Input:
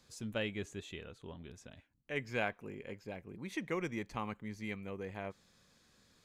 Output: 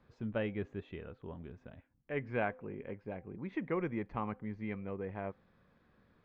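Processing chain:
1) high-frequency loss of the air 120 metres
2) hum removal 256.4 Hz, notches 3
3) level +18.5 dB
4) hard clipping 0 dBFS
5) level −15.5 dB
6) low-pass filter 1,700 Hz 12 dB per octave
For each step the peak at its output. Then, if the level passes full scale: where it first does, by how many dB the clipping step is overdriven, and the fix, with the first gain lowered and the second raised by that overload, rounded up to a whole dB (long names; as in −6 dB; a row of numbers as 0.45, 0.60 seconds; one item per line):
−21.5, −21.5, −3.0, −3.0, −18.5, −21.0 dBFS
no step passes full scale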